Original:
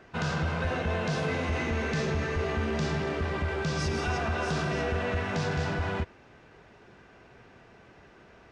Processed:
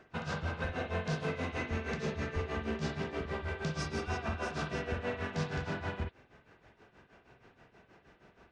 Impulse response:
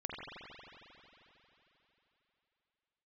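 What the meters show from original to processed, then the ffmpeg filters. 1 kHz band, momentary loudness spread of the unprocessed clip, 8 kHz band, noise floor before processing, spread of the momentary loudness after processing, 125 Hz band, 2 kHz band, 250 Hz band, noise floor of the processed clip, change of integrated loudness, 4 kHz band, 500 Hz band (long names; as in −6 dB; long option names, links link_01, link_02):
−7.0 dB, 1 LU, −7.5 dB, −55 dBFS, 3 LU, −7.0 dB, −6.5 dB, −6.0 dB, −67 dBFS, −6.5 dB, −7.0 dB, −6.5 dB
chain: -filter_complex "[0:a]tremolo=f=6.3:d=0.92[link_01];[1:a]atrim=start_sample=2205,atrim=end_sample=3087[link_02];[link_01][link_02]afir=irnorm=-1:irlink=0"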